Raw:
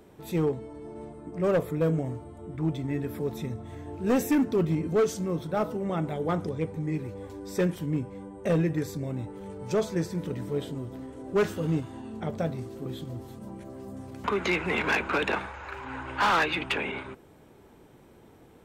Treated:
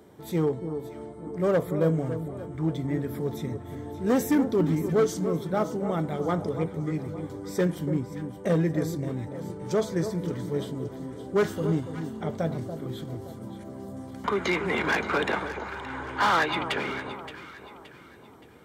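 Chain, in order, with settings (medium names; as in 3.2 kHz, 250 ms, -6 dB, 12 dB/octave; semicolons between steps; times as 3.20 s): high-pass 69 Hz; band-stop 2.6 kHz, Q 6.2; echo whose repeats swap between lows and highs 286 ms, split 1.2 kHz, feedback 62%, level -9 dB; trim +1 dB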